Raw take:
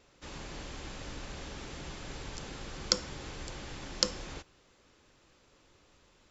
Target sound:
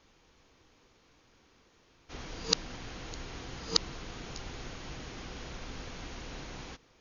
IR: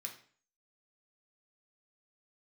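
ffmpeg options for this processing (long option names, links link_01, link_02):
-af "areverse,asetrate=39690,aresample=44100"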